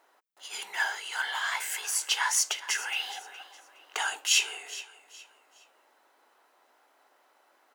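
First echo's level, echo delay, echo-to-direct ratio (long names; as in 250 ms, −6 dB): −16.5 dB, 416 ms, −16.0 dB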